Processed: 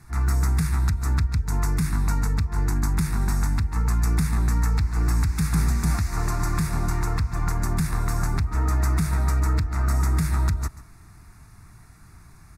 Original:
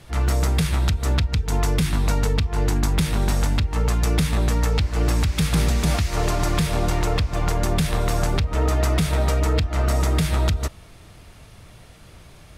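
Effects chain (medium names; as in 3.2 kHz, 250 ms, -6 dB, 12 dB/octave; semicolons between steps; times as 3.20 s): static phaser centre 1.3 kHz, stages 4; on a send: delay 137 ms -17 dB; on the sum: trim -1.5 dB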